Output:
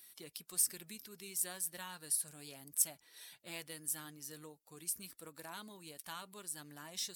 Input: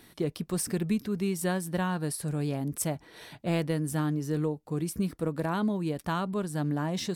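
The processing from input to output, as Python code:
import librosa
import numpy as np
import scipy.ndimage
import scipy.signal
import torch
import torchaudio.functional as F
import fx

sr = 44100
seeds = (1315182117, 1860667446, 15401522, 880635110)

y = fx.spec_quant(x, sr, step_db=15)
y = F.preemphasis(torch.from_numpy(y), 0.97).numpy()
y = y * librosa.db_to_amplitude(1.0)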